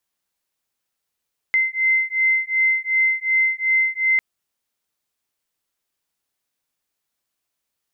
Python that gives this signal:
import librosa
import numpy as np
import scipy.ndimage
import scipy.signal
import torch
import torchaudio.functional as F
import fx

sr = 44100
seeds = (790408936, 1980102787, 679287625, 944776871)

y = fx.two_tone_beats(sr, length_s=2.65, hz=2070.0, beat_hz=2.7, level_db=-19.5)